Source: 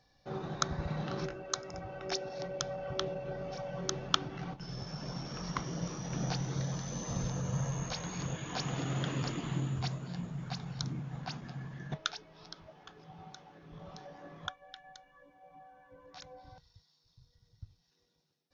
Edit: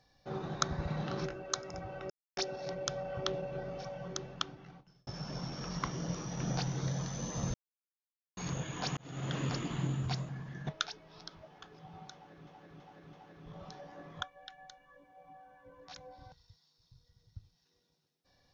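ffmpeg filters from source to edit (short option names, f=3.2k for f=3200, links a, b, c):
-filter_complex "[0:a]asplit=10[a][b][c][d][e][f][g][h][i][j];[a]atrim=end=2.1,asetpts=PTS-STARTPTS,afade=t=out:st=2.096:d=0.004:c=hsin,apad=pad_dur=0.27[k];[b]atrim=start=2.1:end=4.8,asetpts=PTS-STARTPTS,afade=t=in:d=0.004:c=hsin,afade=t=out:st=1.14:d=1.56[l];[c]atrim=start=4.8:end=7.27,asetpts=PTS-STARTPTS,afade=t=in:d=0.004:c=hsin,afade=t=out:st=2.466:d=0.004:c=hsin[m];[d]atrim=start=7.27:end=8.1,asetpts=PTS-STARTPTS,volume=0[n];[e]atrim=start=8.1:end=8.7,asetpts=PTS-STARTPTS,afade=t=in:d=0.004:c=hsin,afade=t=out:st=0.596:d=0.004:c=hsin[o];[f]atrim=start=8.7:end=10.022,asetpts=PTS-STARTPTS,afade=t=in:d=0.42[p];[g]atrim=start=11.538:end=13.722[q];[h]atrim=start=13.388:end=13.722[r];[i]atrim=start=13.388:end=13.722[s];[j]atrim=start=13.388[t];[k][l][m][n][o][p]concat=n=6:v=0:a=1[u];[u][q]acrossfade=d=0.004:c1=hsin:c2=hsin[v];[v][r]acrossfade=d=0.004:c1=hsin:c2=hsin[w];[w][s]acrossfade=d=0.004:c1=hsin:c2=hsin[x];[x][t]acrossfade=d=0.004:c1=hsin:c2=hsin"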